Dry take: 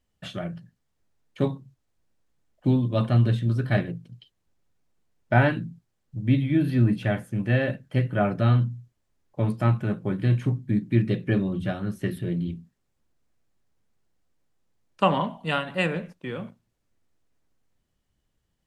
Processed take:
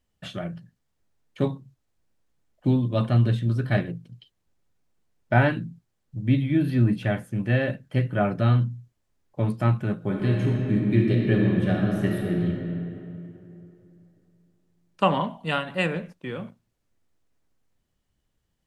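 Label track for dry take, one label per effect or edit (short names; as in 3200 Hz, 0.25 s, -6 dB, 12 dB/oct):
9.950000	12.470000	reverb throw, RT60 3 s, DRR -1 dB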